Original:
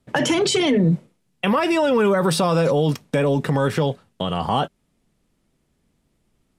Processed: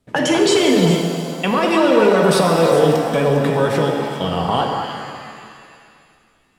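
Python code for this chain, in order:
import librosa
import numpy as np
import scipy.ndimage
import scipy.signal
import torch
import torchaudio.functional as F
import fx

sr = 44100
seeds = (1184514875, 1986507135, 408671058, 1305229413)

y = fx.hum_notches(x, sr, base_hz=50, count=4)
y = fx.echo_stepped(y, sr, ms=101, hz=430.0, octaves=1.4, feedback_pct=70, wet_db=-0.5)
y = fx.rev_shimmer(y, sr, seeds[0], rt60_s=2.2, semitones=7, shimmer_db=-8, drr_db=3.5)
y = y * 10.0 ** (1.0 / 20.0)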